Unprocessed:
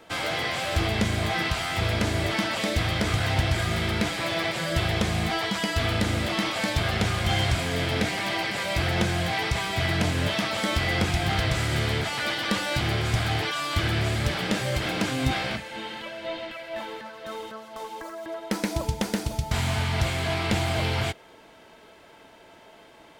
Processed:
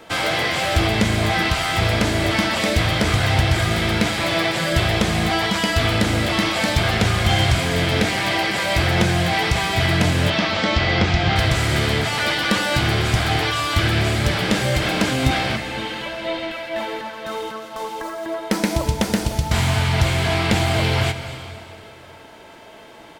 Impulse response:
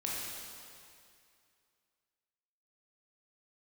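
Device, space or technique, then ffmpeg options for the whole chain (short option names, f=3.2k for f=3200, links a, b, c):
compressed reverb return: -filter_complex "[0:a]asplit=2[a][b];[1:a]atrim=start_sample=2205[c];[b][c]afir=irnorm=-1:irlink=0,acompressor=threshold=-23dB:ratio=6,volume=-8dB[d];[a][d]amix=inputs=2:normalize=0,asettb=1/sr,asplit=3[e][f][g];[e]atrim=end=10.304[h];[f]atrim=start=10.3:end=11.36,asetpts=PTS-STARTPTS,afade=t=in:d=0.004:c=qsin,afade=t=out:st=1.056:d=0.004:c=qsin,lowpass=f=5.6k:w=0.5412,lowpass=f=5.6k:w=1.3066[i];[g]atrim=start=11.356[j];[h][i]acrossfade=d=0.004:c1=hsin:c2=qsin[k];[k][j]acrossfade=d=0.004:c1=qsin:c2=hsin,aecho=1:1:238:0.133,volume=5dB"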